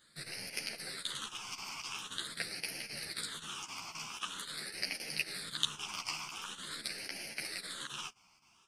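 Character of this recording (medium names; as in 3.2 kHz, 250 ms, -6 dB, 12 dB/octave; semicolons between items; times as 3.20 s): phasing stages 8, 0.45 Hz, lowest notch 510–1100 Hz; chopped level 3.8 Hz, depth 65%, duty 85%; a shimmering, thickened sound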